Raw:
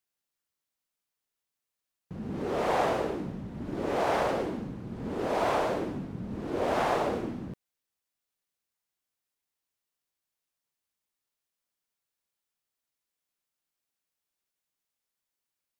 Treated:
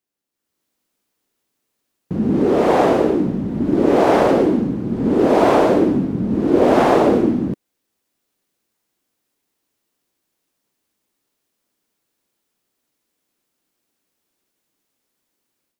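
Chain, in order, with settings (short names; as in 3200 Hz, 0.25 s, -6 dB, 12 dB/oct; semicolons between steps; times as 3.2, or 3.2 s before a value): bell 290 Hz +11.5 dB 1.7 oct; AGC gain up to 11.5 dB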